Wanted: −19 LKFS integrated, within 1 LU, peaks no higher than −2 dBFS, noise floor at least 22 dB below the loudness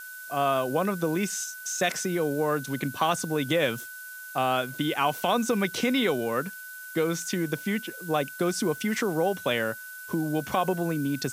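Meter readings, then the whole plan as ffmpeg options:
interfering tone 1,500 Hz; level of the tone −40 dBFS; background noise floor −42 dBFS; target noise floor −50 dBFS; integrated loudness −27.5 LKFS; sample peak −11.5 dBFS; target loudness −19.0 LKFS
→ -af "bandreject=frequency=1500:width=30"
-af "afftdn=noise_reduction=8:noise_floor=-42"
-af "volume=8.5dB"

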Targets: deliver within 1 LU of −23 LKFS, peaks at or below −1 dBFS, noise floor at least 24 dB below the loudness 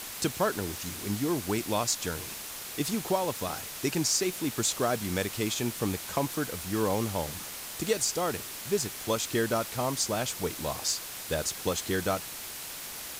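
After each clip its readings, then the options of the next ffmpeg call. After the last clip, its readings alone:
background noise floor −40 dBFS; target noise floor −55 dBFS; integrated loudness −30.5 LKFS; sample peak −13.5 dBFS; target loudness −23.0 LKFS
→ -af "afftdn=noise_reduction=15:noise_floor=-40"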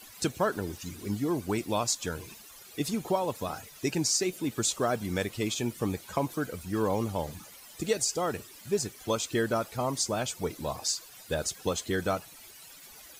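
background noise floor −51 dBFS; target noise floor −55 dBFS
→ -af "afftdn=noise_reduction=6:noise_floor=-51"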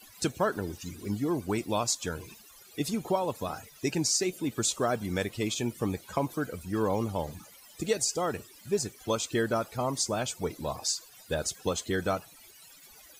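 background noise floor −54 dBFS; target noise floor −55 dBFS
→ -af "afftdn=noise_reduction=6:noise_floor=-54"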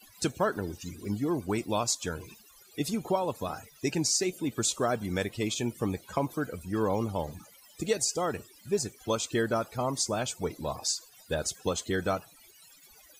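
background noise floor −57 dBFS; integrated loudness −31.0 LKFS; sample peak −14.0 dBFS; target loudness −23.0 LKFS
→ -af "volume=8dB"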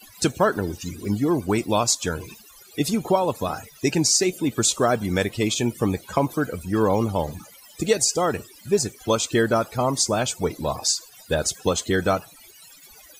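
integrated loudness −23.0 LKFS; sample peak −6.0 dBFS; background noise floor −49 dBFS

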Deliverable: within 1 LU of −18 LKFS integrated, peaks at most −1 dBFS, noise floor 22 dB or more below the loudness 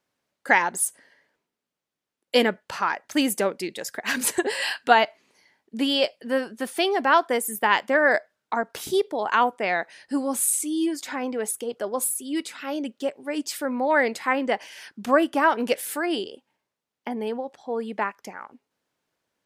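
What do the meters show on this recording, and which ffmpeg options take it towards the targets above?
integrated loudness −24.5 LKFS; sample peak −2.5 dBFS; target loudness −18.0 LKFS
→ -af "volume=6.5dB,alimiter=limit=-1dB:level=0:latency=1"

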